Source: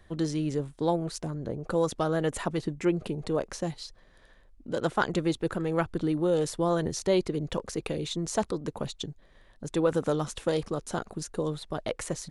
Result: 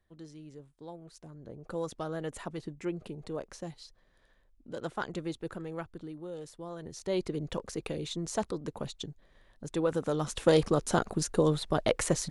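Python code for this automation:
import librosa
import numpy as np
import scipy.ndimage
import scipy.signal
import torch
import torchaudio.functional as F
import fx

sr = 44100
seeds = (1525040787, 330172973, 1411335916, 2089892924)

y = fx.gain(x, sr, db=fx.line((0.97, -19.0), (1.75, -9.0), (5.56, -9.0), (6.16, -16.0), (6.76, -16.0), (7.25, -4.0), (10.1, -4.0), (10.52, 5.0)))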